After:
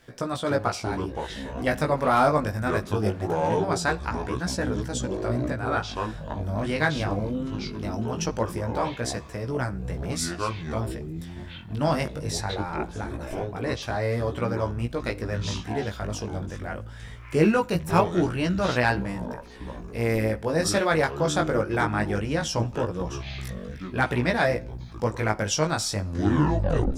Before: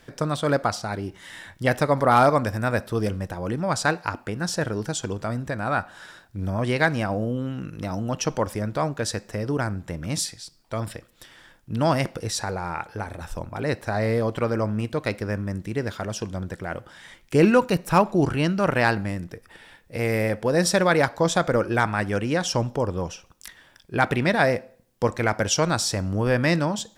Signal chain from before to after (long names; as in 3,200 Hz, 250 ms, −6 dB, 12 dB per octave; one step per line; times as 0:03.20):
turntable brake at the end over 0.96 s
delay with pitch and tempo change per echo 195 ms, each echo −7 semitones, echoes 3, each echo −6 dB
chorus effect 0.21 Hz, delay 16 ms, depth 3.8 ms